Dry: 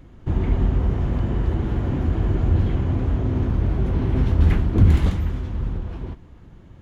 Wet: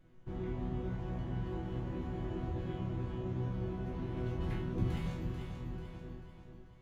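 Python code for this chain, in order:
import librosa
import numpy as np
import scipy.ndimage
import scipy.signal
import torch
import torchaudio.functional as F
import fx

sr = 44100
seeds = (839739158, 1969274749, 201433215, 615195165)

y = fx.resonator_bank(x, sr, root=47, chord='sus4', decay_s=0.42)
y = fx.echo_feedback(y, sr, ms=440, feedback_pct=45, wet_db=-7.0)
y = F.gain(torch.from_numpy(y), 1.0).numpy()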